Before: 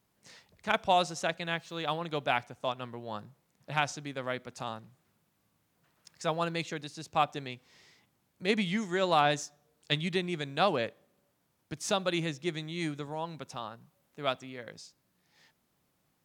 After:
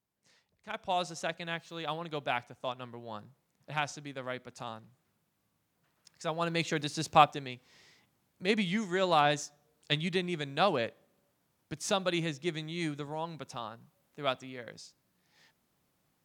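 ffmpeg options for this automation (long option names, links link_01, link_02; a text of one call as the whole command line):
ffmpeg -i in.wav -af "volume=9dB,afade=type=in:start_time=0.69:duration=0.42:silence=0.354813,afade=type=in:start_time=6.35:duration=0.7:silence=0.237137,afade=type=out:start_time=7.05:duration=0.33:silence=0.334965" out.wav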